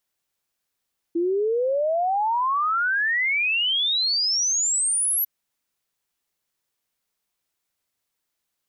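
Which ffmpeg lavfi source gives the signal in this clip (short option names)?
-f lavfi -i "aevalsrc='0.106*clip(min(t,4.1-t)/0.01,0,1)*sin(2*PI*330*4.1/log(12000/330)*(exp(log(12000/330)*t/4.1)-1))':d=4.1:s=44100"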